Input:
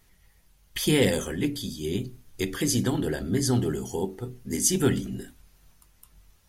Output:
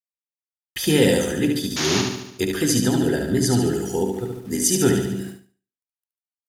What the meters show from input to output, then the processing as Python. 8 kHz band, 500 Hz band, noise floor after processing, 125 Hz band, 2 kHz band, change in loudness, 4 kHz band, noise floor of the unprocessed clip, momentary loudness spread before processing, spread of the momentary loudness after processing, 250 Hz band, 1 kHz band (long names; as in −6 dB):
+5.0 dB, +6.5 dB, below −85 dBFS, +4.0 dB, +6.0 dB, +5.5 dB, +6.5 dB, −61 dBFS, 12 LU, 10 LU, +6.0 dB, +7.0 dB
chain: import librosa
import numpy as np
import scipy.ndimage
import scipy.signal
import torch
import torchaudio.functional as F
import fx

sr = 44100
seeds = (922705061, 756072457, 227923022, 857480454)

p1 = scipy.signal.sosfilt(scipy.signal.butter(2, 40.0, 'highpass', fs=sr, output='sos'), x)
p2 = fx.rider(p1, sr, range_db=3, speed_s=0.5)
p3 = p1 + F.gain(torch.from_numpy(p2), -2.0).numpy()
p4 = fx.notch_comb(p3, sr, f0_hz=1100.0)
p5 = np.where(np.abs(p4) >= 10.0 ** (-45.0 / 20.0), p4, 0.0)
p6 = fx.spec_paint(p5, sr, seeds[0], shape='noise', start_s=1.76, length_s=0.26, low_hz=310.0, high_hz=7000.0, level_db=-25.0)
p7 = fx.echo_feedback(p6, sr, ms=72, feedback_pct=55, wet_db=-5)
y = fx.end_taper(p7, sr, db_per_s=160.0)